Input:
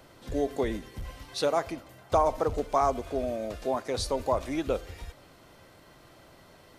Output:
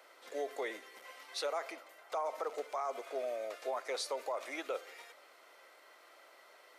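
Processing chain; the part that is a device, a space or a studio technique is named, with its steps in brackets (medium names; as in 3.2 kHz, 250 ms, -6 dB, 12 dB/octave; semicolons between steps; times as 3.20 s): laptop speaker (high-pass 440 Hz 24 dB/octave; peaking EQ 1.3 kHz +6 dB 0.21 oct; peaking EQ 2.1 kHz +6.5 dB 0.41 oct; peak limiter -23 dBFS, peak gain reduction 10.5 dB); trim -5 dB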